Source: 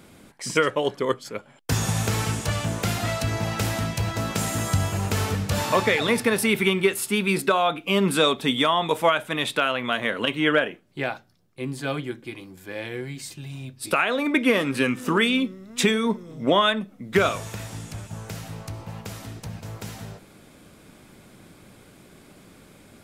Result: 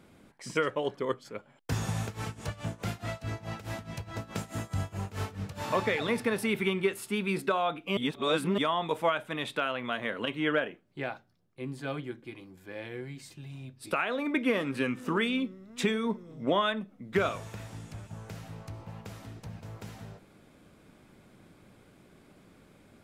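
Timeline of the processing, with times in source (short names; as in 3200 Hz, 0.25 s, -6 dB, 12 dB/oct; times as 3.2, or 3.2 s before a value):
2.03–5.64 tremolo 4.7 Hz, depth 88%
7.97–8.58 reverse
whole clip: high shelf 3900 Hz -8 dB; gain -7 dB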